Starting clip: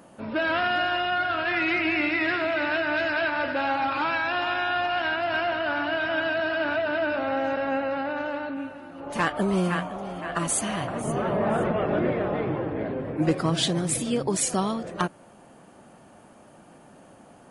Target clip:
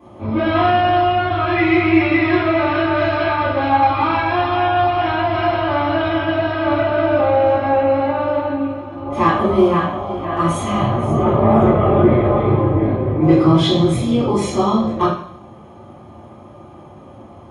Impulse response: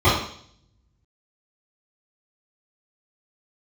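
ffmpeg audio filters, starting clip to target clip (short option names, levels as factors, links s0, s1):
-filter_complex "[0:a]asettb=1/sr,asplit=3[s0][s1][s2];[s0]atrim=end=5.404[s3];[s1]atrim=start=5.4:end=6.1,asetpts=PTS-STARTPTS,afade=t=in:d=0.004:c=qsin,afade=t=out:st=0.696:d=0.004:c=qsin,highshelf=f=7600:g=10[s4];[s2]atrim=start=6.096[s5];[s3][s4]acrossfade=d=0.004:c1=hsin:c2=qsin[s6];[s6][s5]acrossfade=d=0.004:c1=qsin:c2=hsin[s7];[1:a]atrim=start_sample=2205[s8];[s7][s8]afir=irnorm=-1:irlink=0,volume=0.188"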